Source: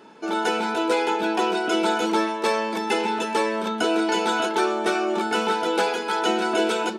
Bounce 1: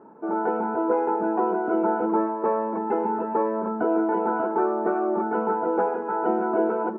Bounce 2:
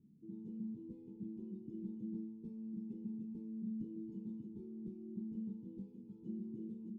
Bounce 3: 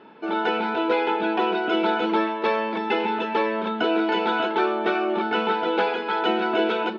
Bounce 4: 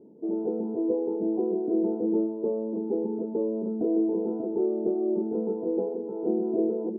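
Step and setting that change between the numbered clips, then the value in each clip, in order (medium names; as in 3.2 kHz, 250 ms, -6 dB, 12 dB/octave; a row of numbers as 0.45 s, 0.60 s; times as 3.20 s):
inverse Chebyshev low-pass, stop band from: 4 kHz, 590 Hz, 10 kHz, 1.6 kHz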